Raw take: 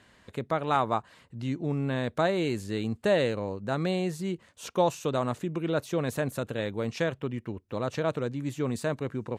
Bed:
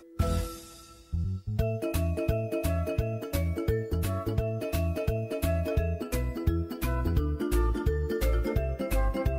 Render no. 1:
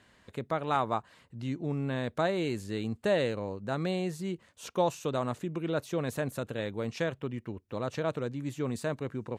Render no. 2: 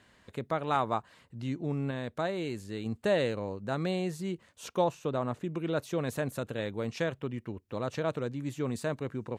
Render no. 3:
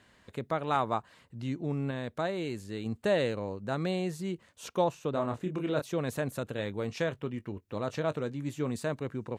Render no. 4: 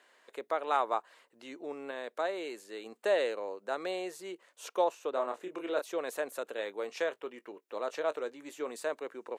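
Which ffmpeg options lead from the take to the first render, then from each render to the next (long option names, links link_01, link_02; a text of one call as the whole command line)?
ffmpeg -i in.wav -af "volume=-3dB" out.wav
ffmpeg -i in.wav -filter_complex "[0:a]asettb=1/sr,asplit=3[link_01][link_02][link_03];[link_01]atrim=end=4.844[link_04];[link_02]atrim=start=4.84:end=5.44,asetpts=PTS-STARTPTS,afade=type=in:duration=0.004:curve=qsin,afade=type=out:start_time=0.596:duration=0.004:curve=qsin,highshelf=frequency=3100:gain=-10.5[link_05];[link_03]atrim=start=5.436[link_06];[link_04][link_05]acrossfade=duration=0.004:curve1=hsin:curve2=qsin[link_07];[link_07][link_06]acrossfade=duration=0.004:curve1=qsin:curve2=hsin,asplit=3[link_08][link_09][link_10];[link_08]atrim=end=1.912[link_11];[link_09]atrim=start=1.908:end=2.862,asetpts=PTS-STARTPTS,volume=-3.5dB[link_12];[link_10]atrim=start=2.858[link_13];[link_11][link_12]acrossfade=duration=0.004:curve1=hsin:curve2=hsin[link_14];[link_14][link_13]acrossfade=duration=0.004:curve1=hsin:curve2=hsin" out.wav
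ffmpeg -i in.wav -filter_complex "[0:a]asettb=1/sr,asplit=3[link_01][link_02][link_03];[link_01]atrim=end=5.124[link_04];[link_02]atrim=start=5.12:end=5.82,asetpts=PTS-STARTPTS,afade=type=in:duration=0.004:curve=qsin,afade=type=out:start_time=0.696:duration=0.004:curve=qsin,asplit=2[link_05][link_06];[link_06]adelay=27,volume=-5.5dB[link_07];[link_05][link_07]amix=inputs=2:normalize=0,atrim=end_sample=30870[link_08];[link_03]atrim=start=5.816[link_09];[link_04][link_08]acrossfade=duration=0.004:curve1=hsin:curve2=qsin[link_10];[link_10][link_09]acrossfade=duration=0.004:curve1=qsin:curve2=hsin,asettb=1/sr,asplit=3[link_11][link_12][link_13];[link_11]atrim=end=6.544[link_14];[link_12]atrim=start=6.54:end=8.71,asetpts=PTS-STARTPTS,afade=type=in:duration=0.004:curve=qsin,afade=type=out:start_time=2.166:duration=0.004:curve=qsin,asplit=2[link_15][link_16];[link_16]adelay=20,volume=-13.5dB[link_17];[link_15][link_17]amix=inputs=2:normalize=0,atrim=end_sample=95697[link_18];[link_13]atrim=start=8.706[link_19];[link_14][link_18]acrossfade=duration=0.004:curve1=hsin:curve2=qsin[link_20];[link_20][link_19]acrossfade=duration=0.004:curve1=qsin:curve2=hsin" out.wav
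ffmpeg -i in.wav -af "highpass=frequency=390:width=0.5412,highpass=frequency=390:width=1.3066,equalizer=frequency=4200:width_type=o:width=1.4:gain=-2.5" out.wav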